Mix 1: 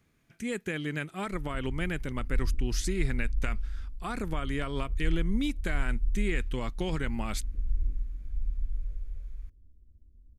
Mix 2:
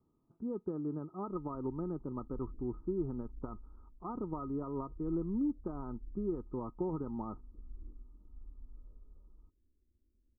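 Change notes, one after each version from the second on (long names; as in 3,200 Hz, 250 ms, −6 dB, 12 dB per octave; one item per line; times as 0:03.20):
background: add low-shelf EQ 220 Hz −11 dB
master: add Chebyshev low-pass with heavy ripple 1,300 Hz, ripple 9 dB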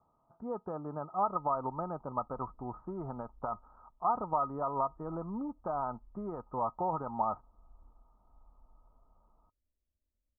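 speech +10.5 dB
master: add low shelf with overshoot 490 Hz −11 dB, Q 3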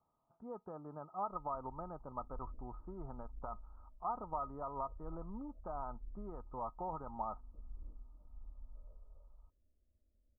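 speech −9.0 dB
background +10.0 dB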